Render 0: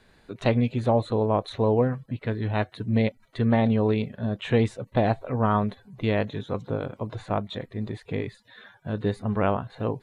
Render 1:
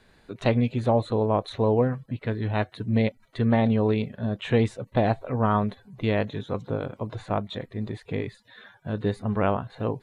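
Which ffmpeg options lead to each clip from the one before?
ffmpeg -i in.wav -af anull out.wav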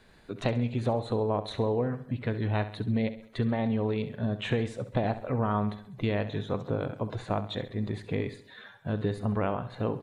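ffmpeg -i in.wav -af "acompressor=threshold=-24dB:ratio=6,aecho=1:1:67|134|201|268|335:0.224|0.103|0.0474|0.0218|0.01" out.wav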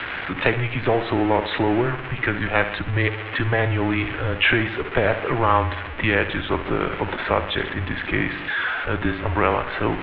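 ffmpeg -i in.wav -af "aeval=exprs='val(0)+0.5*0.0168*sgn(val(0))':channel_layout=same,equalizer=frequency=2100:width_type=o:width=2.4:gain=14,highpass=frequency=150:width_type=q:width=0.5412,highpass=frequency=150:width_type=q:width=1.307,lowpass=frequency=3300:width_type=q:width=0.5176,lowpass=frequency=3300:width_type=q:width=0.7071,lowpass=frequency=3300:width_type=q:width=1.932,afreqshift=-120,volume=4dB" out.wav

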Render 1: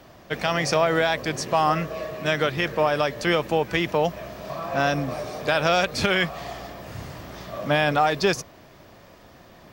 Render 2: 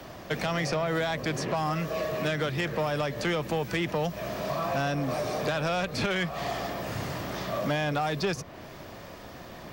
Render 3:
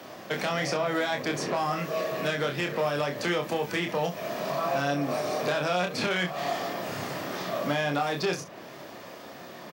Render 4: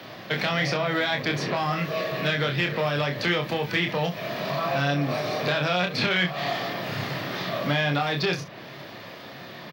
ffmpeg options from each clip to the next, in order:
ffmpeg -i in.wav -filter_complex "[0:a]acrossover=split=92|200|3500[link_01][link_02][link_03][link_04];[link_01]acompressor=threshold=-58dB:ratio=4[link_05];[link_02]acompressor=threshold=-38dB:ratio=4[link_06];[link_03]acompressor=threshold=-32dB:ratio=4[link_07];[link_04]acompressor=threshold=-47dB:ratio=4[link_08];[link_05][link_06][link_07][link_08]amix=inputs=4:normalize=0,asoftclip=type=tanh:threshold=-26.5dB,volume=5.5dB" out.wav
ffmpeg -i in.wav -filter_complex "[0:a]highpass=190,asplit=2[link_01][link_02];[link_02]aecho=0:1:28|66:0.596|0.188[link_03];[link_01][link_03]amix=inputs=2:normalize=0" out.wav
ffmpeg -i in.wav -af "equalizer=frequency=125:width_type=o:width=1:gain=10,equalizer=frequency=2000:width_type=o:width=1:gain=5,equalizer=frequency=4000:width_type=o:width=1:gain=9,equalizer=frequency=8000:width_type=o:width=1:gain=-11" out.wav

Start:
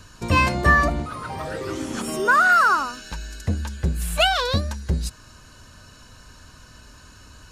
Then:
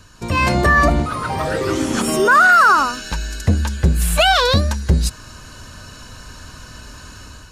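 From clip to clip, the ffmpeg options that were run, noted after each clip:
ffmpeg -i in.wav -af "alimiter=limit=-13.5dB:level=0:latency=1,dynaudnorm=framelen=150:gausssize=5:maxgain=9.5dB" out.wav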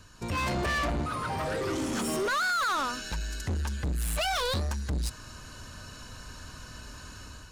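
ffmpeg -i in.wav -af "asoftclip=type=tanh:threshold=-19.5dB,volume=-7dB" out.wav

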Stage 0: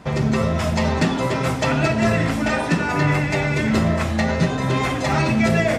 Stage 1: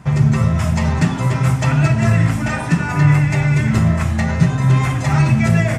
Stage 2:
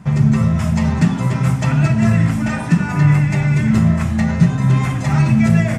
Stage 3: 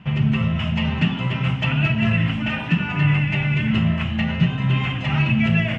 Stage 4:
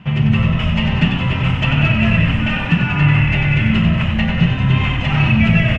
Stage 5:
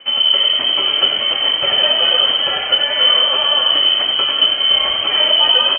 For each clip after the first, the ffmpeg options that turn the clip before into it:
ffmpeg -i in.wav -af "equalizer=frequency=125:width_type=o:width=1:gain=11,equalizer=frequency=250:width_type=o:width=1:gain=-4,equalizer=frequency=500:width_type=o:width=1:gain=-8,equalizer=frequency=4000:width_type=o:width=1:gain=-7,equalizer=frequency=8000:width_type=o:width=1:gain=3,volume=1.5dB" out.wav
ffmpeg -i in.wav -af "equalizer=frequency=200:width=2.7:gain=9.5,volume=-2.5dB" out.wav
ffmpeg -i in.wav -af "lowpass=frequency=2900:width_type=q:width=11,volume=-6dB" out.wav
ffmpeg -i in.wav -filter_complex "[0:a]asplit=9[link_01][link_02][link_03][link_04][link_05][link_06][link_07][link_08][link_09];[link_02]adelay=94,afreqshift=-38,volume=-6dB[link_10];[link_03]adelay=188,afreqshift=-76,volume=-10.3dB[link_11];[link_04]adelay=282,afreqshift=-114,volume=-14.6dB[link_12];[link_05]adelay=376,afreqshift=-152,volume=-18.9dB[link_13];[link_06]adelay=470,afreqshift=-190,volume=-23.2dB[link_14];[link_07]adelay=564,afreqshift=-228,volume=-27.5dB[link_15];[link_08]adelay=658,afreqshift=-266,volume=-31.8dB[link_16];[link_09]adelay=752,afreqshift=-304,volume=-36.1dB[link_17];[link_01][link_10][link_11][link_12][link_13][link_14][link_15][link_16][link_17]amix=inputs=9:normalize=0,volume=4dB" out.wav
ffmpeg -i in.wav -af "lowpass=frequency=2700:width_type=q:width=0.5098,lowpass=frequency=2700:width_type=q:width=0.6013,lowpass=frequency=2700:width_type=q:width=0.9,lowpass=frequency=2700:width_type=q:width=2.563,afreqshift=-3200" out.wav

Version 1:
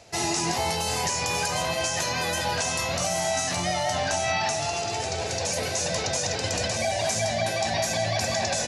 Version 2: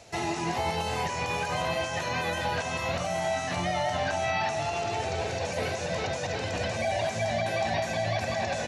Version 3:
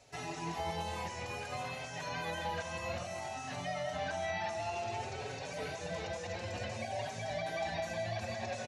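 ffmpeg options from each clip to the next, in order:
ffmpeg -i in.wav -filter_complex "[0:a]alimiter=limit=-18dB:level=0:latency=1:release=80,bandreject=frequency=4900:width=16,acrossover=split=3500[link_01][link_02];[link_02]acompressor=threshold=-46dB:ratio=4:attack=1:release=60[link_03];[link_01][link_03]amix=inputs=2:normalize=0" out.wav
ffmpeg -i in.wav -filter_complex "[0:a]asplit=2[link_01][link_02];[link_02]adelay=4.9,afreqshift=0.57[link_03];[link_01][link_03]amix=inputs=2:normalize=1,volume=-6.5dB" out.wav

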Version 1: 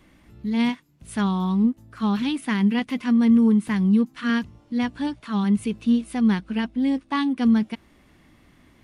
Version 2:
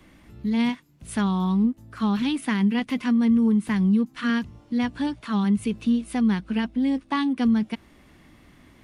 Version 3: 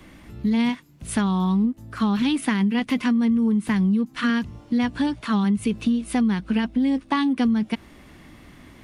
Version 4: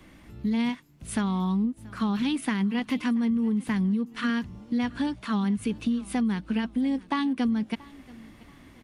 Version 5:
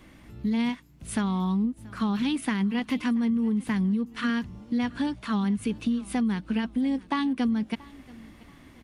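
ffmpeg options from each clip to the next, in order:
ffmpeg -i in.wav -filter_complex "[0:a]acrossover=split=130[link_01][link_02];[link_02]acompressor=threshold=-26dB:ratio=2[link_03];[link_01][link_03]amix=inputs=2:normalize=0,volume=2.5dB" out.wav
ffmpeg -i in.wav -af "acompressor=threshold=-24dB:ratio=6,volume=6dB" out.wav
ffmpeg -i in.wav -af "aecho=1:1:681|1362:0.075|0.0232,volume=-5dB" out.wav
ffmpeg -i in.wav -af "aeval=exprs='val(0)+0.00112*(sin(2*PI*60*n/s)+sin(2*PI*2*60*n/s)/2+sin(2*PI*3*60*n/s)/3+sin(2*PI*4*60*n/s)/4+sin(2*PI*5*60*n/s)/5)':channel_layout=same" out.wav

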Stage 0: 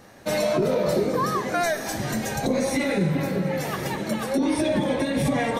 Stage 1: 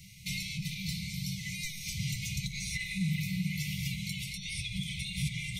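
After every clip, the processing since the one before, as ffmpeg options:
ffmpeg -i in.wav -filter_complex "[0:a]acrossover=split=120|1800|5400[link_01][link_02][link_03][link_04];[link_01]acompressor=threshold=-41dB:ratio=4[link_05];[link_02]acompressor=threshold=-34dB:ratio=4[link_06];[link_03]acompressor=threshold=-41dB:ratio=4[link_07];[link_04]acompressor=threshold=-50dB:ratio=4[link_08];[link_05][link_06][link_07][link_08]amix=inputs=4:normalize=0,afftfilt=real='re*(1-between(b*sr/4096,200,2000))':imag='im*(1-between(b*sr/4096,200,2000))':win_size=4096:overlap=0.75,volume=3dB" out.wav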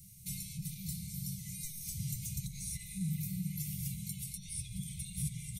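ffmpeg -i in.wav -af "firequalizer=gain_entry='entry(140,0);entry(740,-22);entry(9300,9)':delay=0.05:min_phase=1,volume=-3.5dB" out.wav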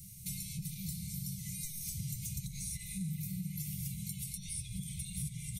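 ffmpeg -i in.wav -af "acompressor=threshold=-43dB:ratio=2.5,volume=4.5dB" out.wav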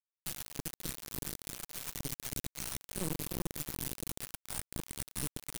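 ffmpeg -i in.wav -af "acrusher=bits=3:dc=4:mix=0:aa=0.000001,volume=2.5dB" out.wav

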